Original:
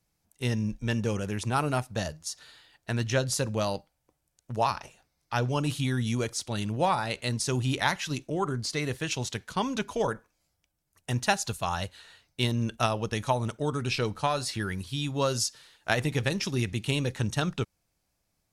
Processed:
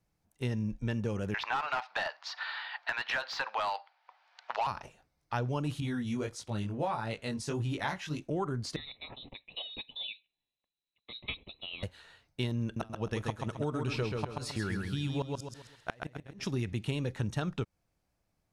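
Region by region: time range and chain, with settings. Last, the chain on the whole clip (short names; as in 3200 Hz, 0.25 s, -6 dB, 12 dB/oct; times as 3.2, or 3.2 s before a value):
1.34–4.67 Chebyshev band-pass 810–4600 Hz, order 3 + overdrive pedal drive 20 dB, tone 3100 Hz, clips at -15.5 dBFS + three-band squash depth 70%
5.8–8.22 chorus 1.6 Hz, delay 17.5 ms, depth 3.9 ms + mismatched tape noise reduction decoder only
8.76–11.83 fixed phaser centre 510 Hz, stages 8 + inverted band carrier 4000 Hz + air absorption 220 m
12.63–16.45 flipped gate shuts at -16 dBFS, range -30 dB + feedback echo 0.133 s, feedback 35%, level -5 dB
whole clip: high shelf 3100 Hz -10.5 dB; compressor 3:1, threshold -30 dBFS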